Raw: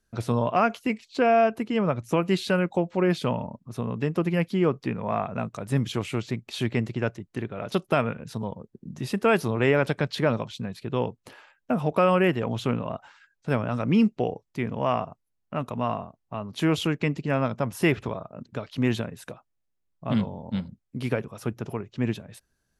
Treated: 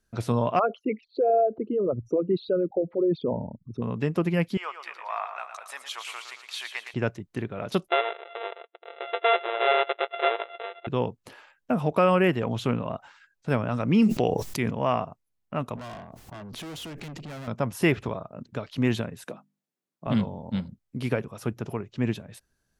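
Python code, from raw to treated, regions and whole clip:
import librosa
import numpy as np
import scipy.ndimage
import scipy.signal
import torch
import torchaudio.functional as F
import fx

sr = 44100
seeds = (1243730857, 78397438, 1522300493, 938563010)

y = fx.chain(x, sr, fx.envelope_sharpen(power=3.0),
    fx.spacing_loss(db_at_10k=27), at=(0.59, 3.82))
y = fx.chain(y, sr, fx.highpass(hz=860.0, slope=24),
    fx.echo_feedback(ms=113, feedback_pct=52, wet_db=-8.5), at=(4.57, 6.94))
y = fx.chain(y, sr, fx.sample_sort(block=64),
    fx.brickwall_bandpass(low_hz=350.0, high_hz=4000.0), at=(7.88, 10.87))
y = fx.chain(y, sr, fx.high_shelf(hz=3600.0, db=9.0),
    fx.sustainer(db_per_s=29.0), at=(14.02, 14.71))
y = fx.chain(y, sr, fx.tube_stage(drive_db=37.0, bias=0.35),
    fx.pre_swell(db_per_s=24.0), at=(15.76, 17.48))
y = fx.chain(y, sr, fx.highpass(hz=180.0, slope=24),
    fx.low_shelf(hz=360.0, db=6.5),
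    fx.hum_notches(base_hz=50, count=6), at=(19.24, 20.07))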